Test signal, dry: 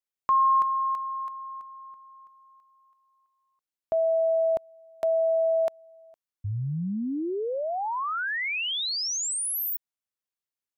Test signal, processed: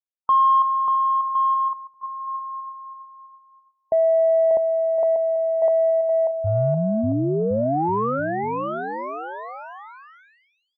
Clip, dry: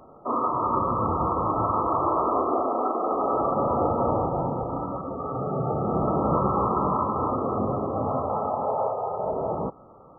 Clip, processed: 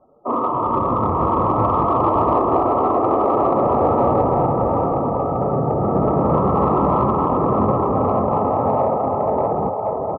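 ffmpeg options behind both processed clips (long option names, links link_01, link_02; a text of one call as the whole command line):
ffmpeg -i in.wav -filter_complex "[0:a]aecho=1:1:590|1062|1440|1742|1983:0.631|0.398|0.251|0.158|0.1,afftdn=noise_reduction=16:noise_floor=-37,lowpass=frequency=1200:width=0.5412,lowpass=frequency=1200:width=1.3066,asplit=2[link_01][link_02];[link_02]asoftclip=type=tanh:threshold=-19.5dB,volume=-9.5dB[link_03];[link_01][link_03]amix=inputs=2:normalize=0,volume=4dB" out.wav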